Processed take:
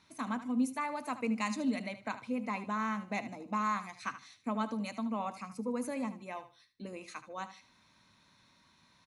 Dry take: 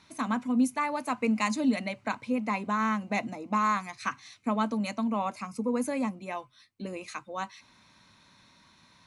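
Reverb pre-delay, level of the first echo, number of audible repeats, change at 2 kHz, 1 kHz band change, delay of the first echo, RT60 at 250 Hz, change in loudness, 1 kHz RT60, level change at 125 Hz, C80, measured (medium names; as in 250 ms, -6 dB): no reverb, -13.0 dB, 2, -6.5 dB, -6.5 dB, 76 ms, no reverb, -6.0 dB, no reverb, -6.0 dB, no reverb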